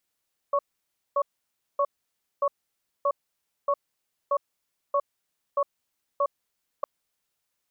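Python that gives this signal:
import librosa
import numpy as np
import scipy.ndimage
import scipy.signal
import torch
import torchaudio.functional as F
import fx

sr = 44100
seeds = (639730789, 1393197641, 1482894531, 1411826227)

y = fx.cadence(sr, length_s=6.31, low_hz=570.0, high_hz=1110.0, on_s=0.06, off_s=0.57, level_db=-23.0)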